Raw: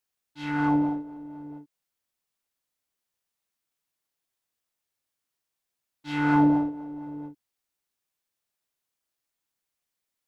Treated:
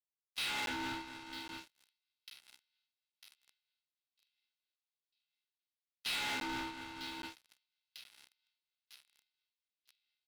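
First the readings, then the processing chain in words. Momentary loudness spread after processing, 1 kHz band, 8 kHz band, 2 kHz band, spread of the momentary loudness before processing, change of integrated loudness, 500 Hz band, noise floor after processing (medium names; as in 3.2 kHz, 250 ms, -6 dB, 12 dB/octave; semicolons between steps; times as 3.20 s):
21 LU, -12.5 dB, no reading, -5.0 dB, 20 LU, -14.0 dB, -13.0 dB, under -85 dBFS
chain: gate with hold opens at -38 dBFS; tilt EQ -4 dB/octave; level rider gain up to 8 dB; Butterworth band-pass 3.7 kHz, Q 1.9; compression 3:1, threshold -60 dBFS, peak gain reduction 12 dB; ring modulator 620 Hz; doubling 25 ms -9 dB; on a send: feedback echo behind a high-pass 949 ms, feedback 55%, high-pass 3.6 kHz, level -14.5 dB; on the sum: waveshaping leveller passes 5; crackling interface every 0.82 s, samples 512, zero, from 0.66 s; tape noise reduction on one side only encoder only; trim +14 dB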